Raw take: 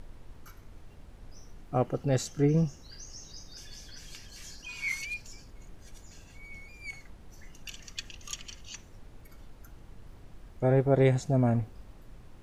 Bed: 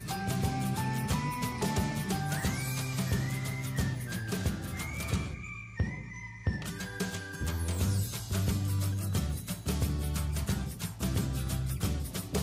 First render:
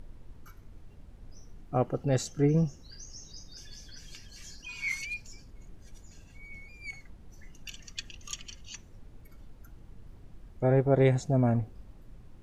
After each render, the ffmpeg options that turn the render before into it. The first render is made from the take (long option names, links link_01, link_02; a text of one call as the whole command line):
ffmpeg -i in.wav -af "afftdn=noise_reduction=6:noise_floor=-52" out.wav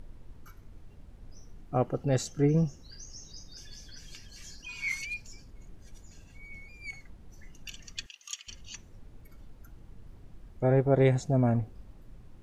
ffmpeg -i in.wav -filter_complex "[0:a]asettb=1/sr,asplit=3[link_01][link_02][link_03];[link_01]atrim=end=8.064[link_04];[link_02]atrim=start=8.06:end=8.48,asetpts=PTS-STARTPTS,afade=type=in:duration=0.004:curve=qsin,afade=type=out:start_time=0.416:duration=0.004:curve=qsin,highpass=1400[link_05];[link_03]atrim=start=8.476[link_06];[link_04][link_05]acrossfade=duration=0.004:curve1=hsin:curve2=qsin[link_07];[link_07][link_06]acrossfade=duration=0.004:curve1=qsin:curve2=hsin" out.wav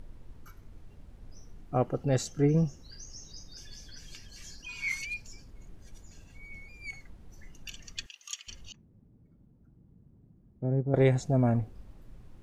ffmpeg -i in.wav -filter_complex "[0:a]asettb=1/sr,asplit=3[link_01][link_02][link_03];[link_01]atrim=end=8.724[link_04];[link_02]atrim=start=8.72:end=10.94,asetpts=PTS-STARTPTS,afade=type=in:duration=0.004:curve=qsin,afade=type=out:start_time=2.216:duration=0.004:curve=qsin,bandpass=frequency=180:width_type=q:width=1.3[link_05];[link_03]atrim=start=10.936[link_06];[link_04][link_05]acrossfade=duration=0.004:curve1=hsin:curve2=qsin[link_07];[link_07][link_06]acrossfade=duration=0.004:curve1=qsin:curve2=hsin" out.wav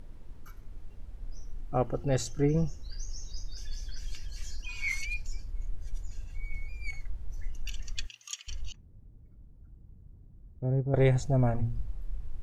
ffmpeg -i in.wav -af "bandreject=frequency=116.8:width_type=h:width=4,bandreject=frequency=233.6:width_type=h:width=4,bandreject=frequency=350.4:width_type=h:width=4,asubboost=boost=7:cutoff=69" out.wav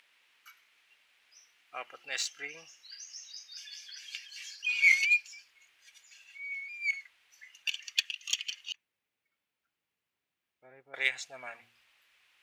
ffmpeg -i in.wav -filter_complex "[0:a]highpass=frequency=2500:width_type=q:width=2,asplit=2[link_01][link_02];[link_02]adynamicsmooth=sensitivity=4.5:basefreq=4100,volume=3dB[link_03];[link_01][link_03]amix=inputs=2:normalize=0" out.wav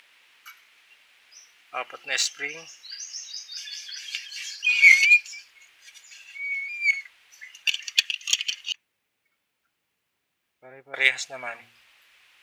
ffmpeg -i in.wav -af "volume=9.5dB,alimiter=limit=-3dB:level=0:latency=1" out.wav